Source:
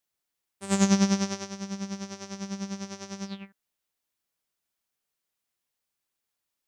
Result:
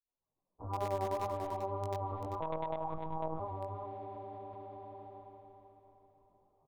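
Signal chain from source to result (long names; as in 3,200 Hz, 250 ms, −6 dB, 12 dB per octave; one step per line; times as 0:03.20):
fade in at the beginning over 1.92 s
gate on every frequency bin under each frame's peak −15 dB weak
Butterworth low-pass 1,100 Hz 72 dB per octave
low-shelf EQ 60 Hz +12 dB
in parallel at −11 dB: bit reduction 6 bits
on the sum: tape wow and flutter 26 cents
multi-voice chorus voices 2, 0.79 Hz, delay 17 ms, depth 3.9 ms
single-tap delay 391 ms −13 dB
on a send at −19 dB: convolution reverb RT60 3.7 s, pre-delay 103 ms
0:02.40–0:03.40: on the sum: one-pitch LPC vocoder at 8 kHz 160 Hz
envelope flattener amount 70%
level +4.5 dB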